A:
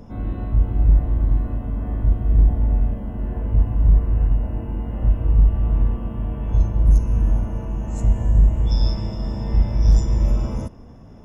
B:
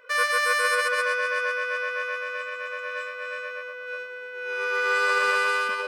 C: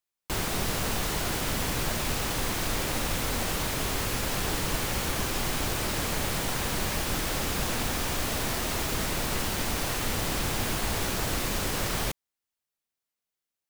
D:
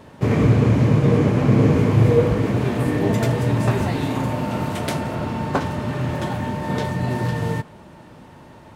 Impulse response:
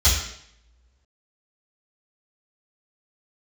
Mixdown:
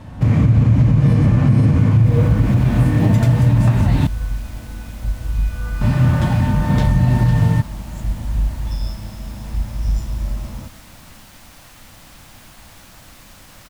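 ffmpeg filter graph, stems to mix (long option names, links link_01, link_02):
-filter_complex "[0:a]volume=-5dB[link_01];[1:a]acrossover=split=1800[link_02][link_03];[link_02]aeval=exprs='val(0)*(1-1/2+1/2*cos(2*PI*2.1*n/s))':channel_layout=same[link_04];[link_03]aeval=exprs='val(0)*(1-1/2-1/2*cos(2*PI*2.1*n/s))':channel_layout=same[link_05];[link_04][link_05]amix=inputs=2:normalize=0,adelay=900,volume=-8.5dB[link_06];[2:a]adelay=1750,volume=-13.5dB[link_07];[3:a]equalizer=frequency=77:width=0.43:gain=12.5,volume=1.5dB,asplit=3[link_08][link_09][link_10];[link_08]atrim=end=4.07,asetpts=PTS-STARTPTS,afade=type=out:start_time=4.066:duration=0.004:curve=hsin[link_11];[link_09]atrim=start=4.07:end=5.81,asetpts=PTS-STARTPTS,volume=0[link_12];[link_10]atrim=start=5.81,asetpts=PTS-STARTPTS,afade=type=in:duration=0.004:curve=hsin[link_13];[link_11][link_12][link_13]concat=n=3:v=0:a=1[link_14];[link_01][link_06][link_07][link_14]amix=inputs=4:normalize=0,equalizer=frequency=410:width=3.3:gain=-13,alimiter=limit=-5.5dB:level=0:latency=1:release=162"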